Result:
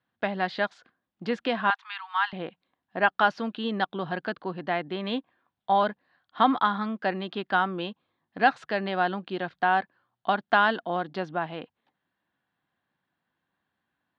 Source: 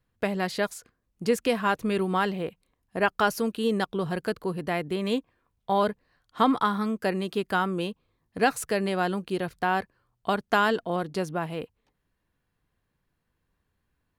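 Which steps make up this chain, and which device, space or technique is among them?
kitchen radio (loudspeaker in its box 210–3,900 Hz, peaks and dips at 440 Hz −9 dB, 770 Hz +5 dB, 1,600 Hz +4 dB, 2,400 Hz −3 dB, 3,500 Hz +4 dB)
0:01.70–0:02.33: Butterworth high-pass 840 Hz 96 dB per octave

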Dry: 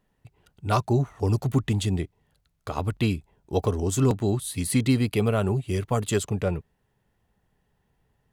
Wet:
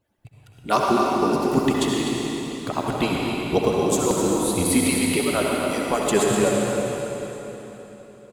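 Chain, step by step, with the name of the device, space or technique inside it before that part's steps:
harmonic-percussive split with one part muted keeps percussive
cave (single-tap delay 252 ms −8.5 dB; convolution reverb RT60 3.8 s, pre-delay 60 ms, DRR −2.5 dB)
level +4 dB

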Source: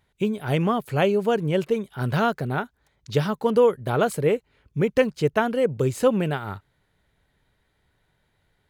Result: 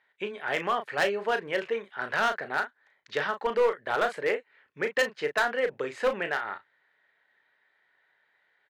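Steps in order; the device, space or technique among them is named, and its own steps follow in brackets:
megaphone (band-pass filter 580–3,400 Hz; parametric band 1,800 Hz +11 dB 0.5 octaves; hard clipping −18 dBFS, distortion −11 dB; double-tracking delay 35 ms −8.5 dB)
level −1.5 dB

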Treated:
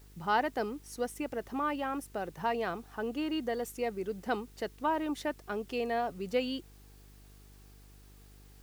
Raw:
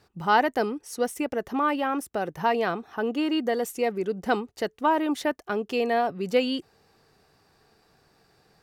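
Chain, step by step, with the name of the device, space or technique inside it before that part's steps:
video cassette with head-switching buzz (hum with harmonics 50 Hz, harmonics 9, −48 dBFS −7 dB per octave; white noise bed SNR 29 dB)
level −8 dB

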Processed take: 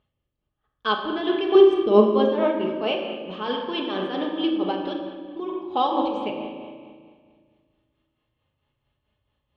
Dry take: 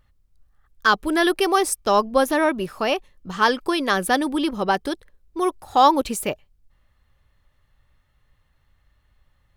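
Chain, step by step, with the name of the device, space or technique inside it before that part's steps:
0:01.55–0:02.11: low shelf with overshoot 530 Hz +11.5 dB, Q 1.5
combo amplifier with spring reverb and tremolo (spring reverb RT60 1.8 s, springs 37 ms, chirp 75 ms, DRR 5.5 dB; amplitude tremolo 4.5 Hz, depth 67%; loudspeaker in its box 92–3,500 Hz, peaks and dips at 190 Hz −5 dB, 330 Hz +5 dB, 480 Hz +3 dB, 1,400 Hz −7 dB, 1,900 Hz −9 dB, 3,100 Hz +7 dB)
rectangular room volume 1,400 cubic metres, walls mixed, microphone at 1.4 metres
level −5 dB

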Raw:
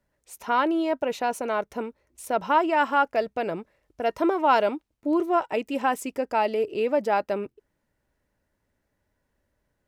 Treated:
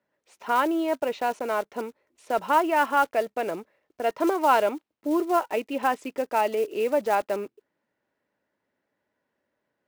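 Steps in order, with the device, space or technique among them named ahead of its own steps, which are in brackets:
early digital voice recorder (band-pass filter 240–3,800 Hz; one scale factor per block 5 bits)

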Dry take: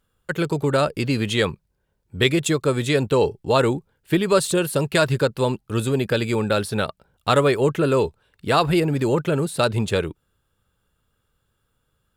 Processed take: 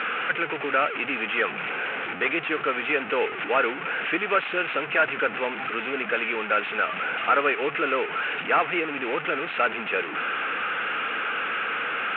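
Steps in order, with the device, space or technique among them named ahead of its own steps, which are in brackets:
digital answering machine (band-pass filter 300–3,400 Hz; linear delta modulator 16 kbit/s, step −22.5 dBFS; loudspeaker in its box 360–3,200 Hz, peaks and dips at 380 Hz −7 dB, 580 Hz −7 dB, 970 Hz −7 dB, 1,400 Hz +6 dB, 2,500 Hz +7 dB)

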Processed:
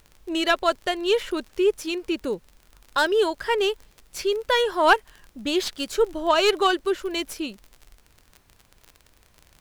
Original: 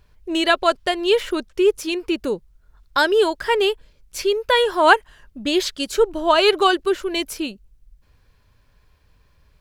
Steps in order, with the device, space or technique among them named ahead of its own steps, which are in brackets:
record under a worn stylus (stylus tracing distortion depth 0.037 ms; surface crackle 36 per second −29 dBFS; pink noise bed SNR 38 dB)
level −4 dB

